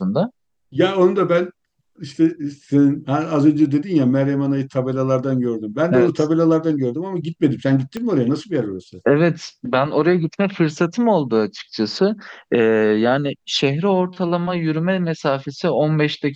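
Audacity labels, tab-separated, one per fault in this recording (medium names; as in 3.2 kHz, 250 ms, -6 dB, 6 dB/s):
7.970000	7.970000	pop -14 dBFS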